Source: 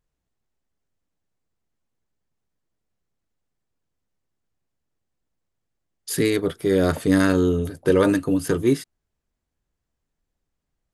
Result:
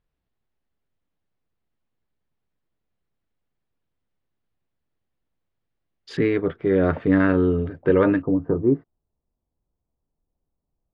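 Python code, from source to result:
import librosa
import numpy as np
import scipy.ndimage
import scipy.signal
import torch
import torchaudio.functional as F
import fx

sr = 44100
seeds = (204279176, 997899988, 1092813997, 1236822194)

y = fx.lowpass(x, sr, hz=fx.steps((0.0, 4100.0), (6.17, 2400.0), (8.22, 1000.0)), slope=24)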